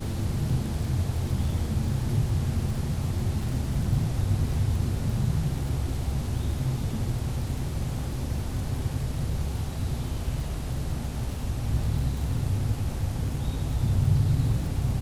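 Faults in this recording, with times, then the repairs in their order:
crackle 42 per s -34 dBFS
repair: de-click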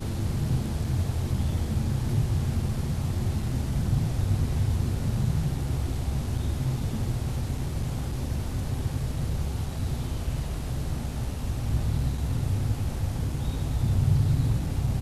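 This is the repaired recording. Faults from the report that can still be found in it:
nothing left

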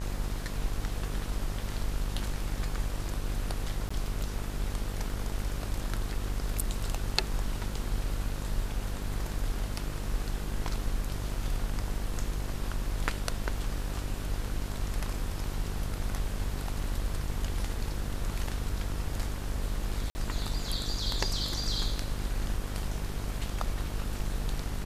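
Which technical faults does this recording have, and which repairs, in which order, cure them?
buzz 50 Hz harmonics 39 -36 dBFS
3.89–3.90 s: dropout 15 ms
20.10–20.15 s: dropout 50 ms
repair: de-hum 50 Hz, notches 39; interpolate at 3.89 s, 15 ms; interpolate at 20.10 s, 50 ms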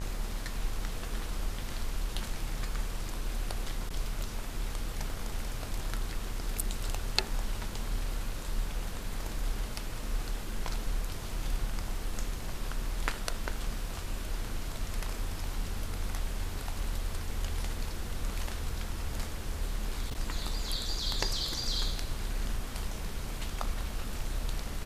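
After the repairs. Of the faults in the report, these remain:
nothing left

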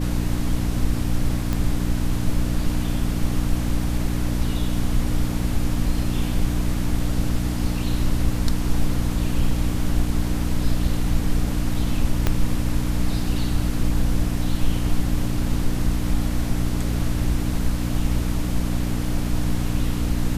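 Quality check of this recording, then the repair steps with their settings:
hum 60 Hz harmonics 5 -25 dBFS
1.53 s: pop -11 dBFS
12.27 s: pop -6 dBFS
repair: de-click; de-hum 60 Hz, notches 5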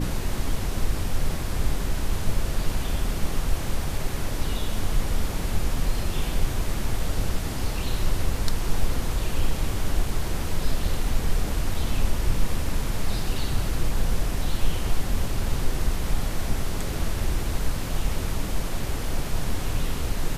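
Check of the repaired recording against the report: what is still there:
12.27 s: pop

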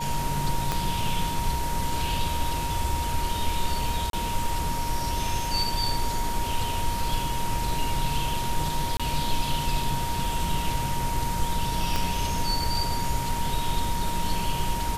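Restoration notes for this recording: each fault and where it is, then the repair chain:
whine 940 Hz -30 dBFS
0.72 s: pop -10 dBFS
4.10–4.13 s: dropout 32 ms
8.97–9.00 s: dropout 26 ms
11.96 s: pop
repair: de-click; band-stop 940 Hz, Q 30; interpolate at 4.10 s, 32 ms; interpolate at 8.97 s, 26 ms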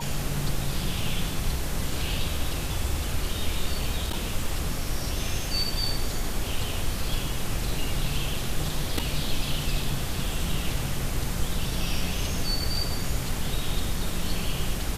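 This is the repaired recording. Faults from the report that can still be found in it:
0.72 s: pop
11.96 s: pop

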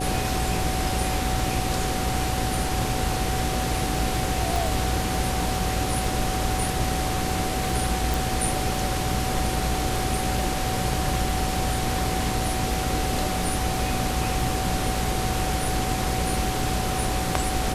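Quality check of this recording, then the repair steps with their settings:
buzz 60 Hz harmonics 9 -30 dBFS
crackle 40 per s -32 dBFS
whine 750 Hz -30 dBFS
4.56 s: pop
8.14 s: pop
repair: de-click; de-hum 60 Hz, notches 9; band-stop 750 Hz, Q 30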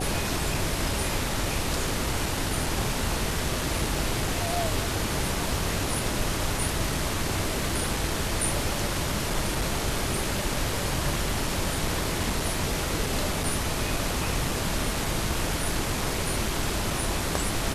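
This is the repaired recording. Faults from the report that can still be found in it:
nothing left

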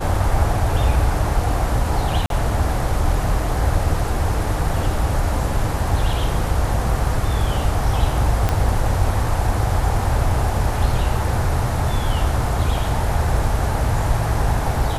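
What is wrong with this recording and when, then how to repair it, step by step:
2.26–2.30 s: dropout 42 ms
8.49 s: pop -6 dBFS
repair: de-click; interpolate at 2.26 s, 42 ms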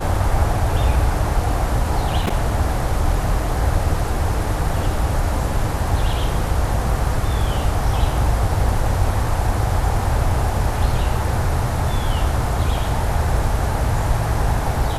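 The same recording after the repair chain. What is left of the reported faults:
8.49 s: pop

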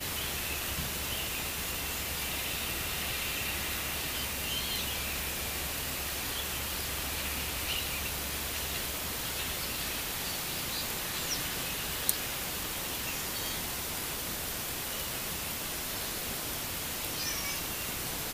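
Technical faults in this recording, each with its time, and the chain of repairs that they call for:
crackle 41 per s -38 dBFS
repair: de-click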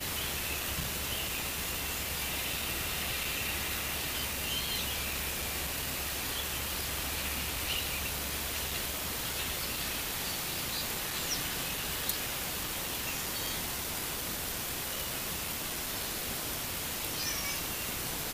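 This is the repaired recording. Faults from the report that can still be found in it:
nothing left

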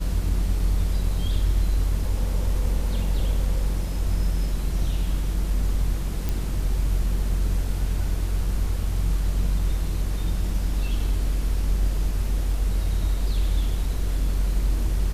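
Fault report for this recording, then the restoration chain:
6.29 s: pop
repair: de-click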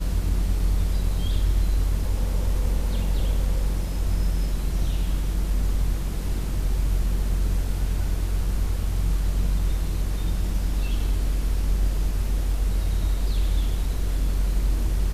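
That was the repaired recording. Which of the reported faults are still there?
nothing left

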